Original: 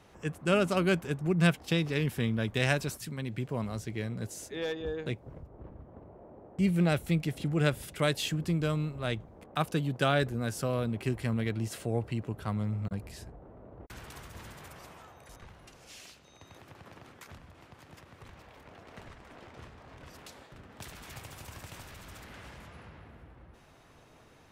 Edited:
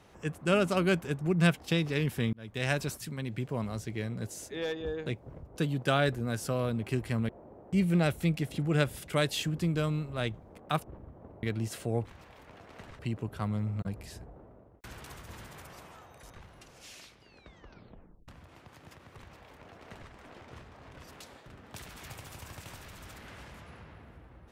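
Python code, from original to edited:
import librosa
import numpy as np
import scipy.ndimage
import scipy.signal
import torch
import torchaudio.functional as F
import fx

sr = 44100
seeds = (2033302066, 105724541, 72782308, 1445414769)

y = fx.edit(x, sr, fx.fade_in_span(start_s=2.33, length_s=0.48),
    fx.swap(start_s=5.56, length_s=0.59, other_s=9.7, other_length_s=1.73),
    fx.fade_out_to(start_s=13.42, length_s=0.44, floor_db=-16.0),
    fx.tape_stop(start_s=15.98, length_s=1.36),
    fx.duplicate(start_s=18.23, length_s=0.94, to_s=12.05), tone=tone)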